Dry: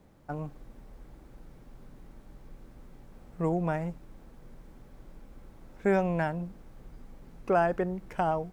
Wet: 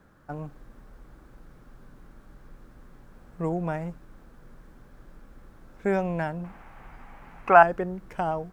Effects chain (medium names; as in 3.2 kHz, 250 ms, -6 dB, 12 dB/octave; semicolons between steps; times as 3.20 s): 6.44–7.63 s: high-order bell 1.4 kHz +14.5 dB 2.3 oct; band noise 1–1.7 kHz -66 dBFS